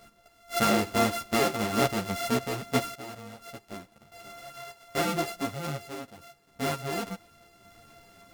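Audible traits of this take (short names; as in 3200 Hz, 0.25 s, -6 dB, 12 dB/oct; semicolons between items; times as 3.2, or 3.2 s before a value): a buzz of ramps at a fixed pitch in blocks of 64 samples; random-step tremolo 1.7 Hz, depth 85%; a shimmering, thickened sound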